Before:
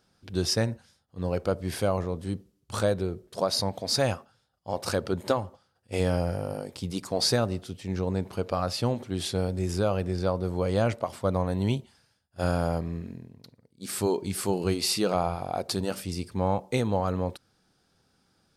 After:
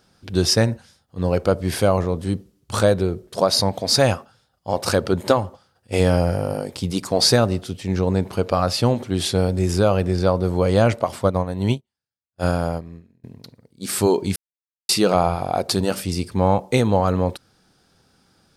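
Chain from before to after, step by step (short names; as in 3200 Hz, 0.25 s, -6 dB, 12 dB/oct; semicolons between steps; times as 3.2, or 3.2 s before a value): 11.27–13.24 upward expander 2.5:1, over -46 dBFS; 14.36–14.89 mute; gain +8.5 dB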